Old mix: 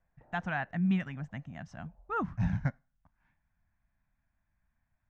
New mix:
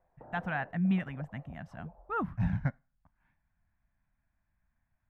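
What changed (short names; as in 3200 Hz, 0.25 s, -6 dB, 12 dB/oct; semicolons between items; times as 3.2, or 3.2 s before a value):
background +12.0 dB; master: remove synth low-pass 6400 Hz, resonance Q 3.4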